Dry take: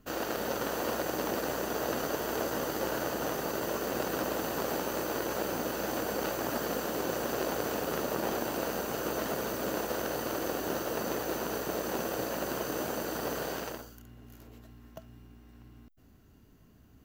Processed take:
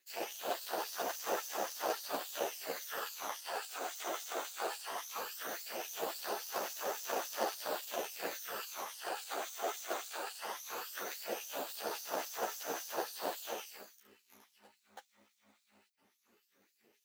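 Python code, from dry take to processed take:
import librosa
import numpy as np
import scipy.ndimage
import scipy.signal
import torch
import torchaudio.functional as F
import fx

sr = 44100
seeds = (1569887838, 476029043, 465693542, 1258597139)

p1 = fx.phaser_stages(x, sr, stages=12, low_hz=270.0, high_hz=3400.0, hz=0.18, feedback_pct=25)
p2 = p1 * np.sin(2.0 * np.pi * 150.0 * np.arange(len(p1)) / sr)
p3 = fx.sample_hold(p2, sr, seeds[0], rate_hz=2200.0, jitter_pct=20)
p4 = p2 + F.gain(torch.from_numpy(p3), -4.0).numpy()
p5 = fx.filter_lfo_highpass(p4, sr, shape='sine', hz=3.6, low_hz=540.0, high_hz=5400.0, q=0.99)
p6 = fx.ensemble(p5, sr)
y = F.gain(torch.from_numpy(p6), 4.0).numpy()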